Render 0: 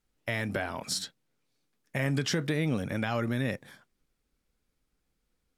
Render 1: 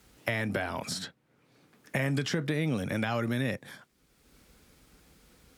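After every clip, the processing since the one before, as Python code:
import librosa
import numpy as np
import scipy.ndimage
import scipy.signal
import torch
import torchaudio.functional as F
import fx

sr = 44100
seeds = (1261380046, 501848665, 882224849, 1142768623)

y = scipy.signal.sosfilt(scipy.signal.butter(2, 54.0, 'highpass', fs=sr, output='sos'), x)
y = fx.band_squash(y, sr, depth_pct=70)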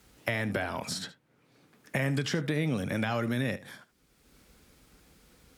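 y = x + 10.0 ** (-17.0 / 20.0) * np.pad(x, (int(74 * sr / 1000.0), 0))[:len(x)]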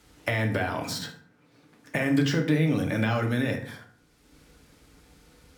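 y = fx.rev_fdn(x, sr, rt60_s=0.61, lf_ratio=1.3, hf_ratio=0.6, size_ms=20.0, drr_db=3.0)
y = np.interp(np.arange(len(y)), np.arange(len(y))[::2], y[::2])
y = y * librosa.db_to_amplitude(2.0)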